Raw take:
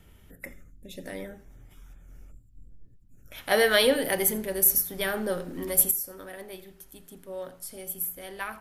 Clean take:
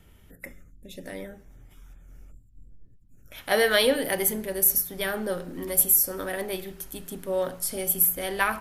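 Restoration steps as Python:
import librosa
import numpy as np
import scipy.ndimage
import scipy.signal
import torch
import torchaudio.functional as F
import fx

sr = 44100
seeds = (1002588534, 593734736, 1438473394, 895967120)

y = fx.fix_echo_inverse(x, sr, delay_ms=84, level_db=-21.0)
y = fx.gain(y, sr, db=fx.steps((0.0, 0.0), (5.91, 10.5)))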